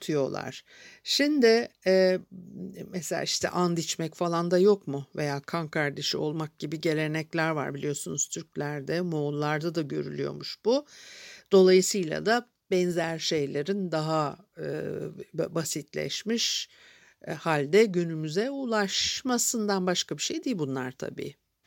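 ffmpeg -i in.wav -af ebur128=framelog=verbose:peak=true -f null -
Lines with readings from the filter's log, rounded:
Integrated loudness:
  I:         -27.5 LUFS
  Threshold: -37.9 LUFS
Loudness range:
  LRA:         5.0 LU
  Threshold: -47.9 LUFS
  LRA low:   -30.7 LUFS
  LRA high:  -25.6 LUFS
True peak:
  Peak:       -8.9 dBFS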